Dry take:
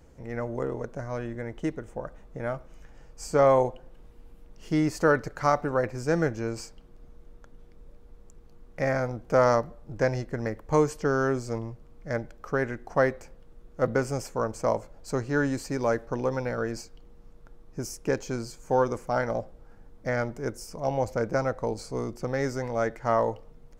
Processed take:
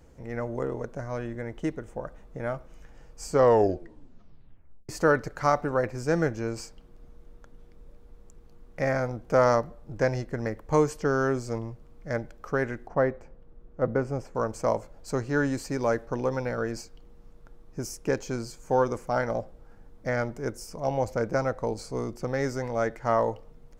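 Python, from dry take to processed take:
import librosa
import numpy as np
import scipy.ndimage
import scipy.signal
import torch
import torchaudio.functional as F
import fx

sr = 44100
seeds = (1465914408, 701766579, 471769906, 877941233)

y = fx.lowpass(x, sr, hz=1100.0, slope=6, at=(12.87, 14.35))
y = fx.edit(y, sr, fx.tape_stop(start_s=3.31, length_s=1.58), tone=tone)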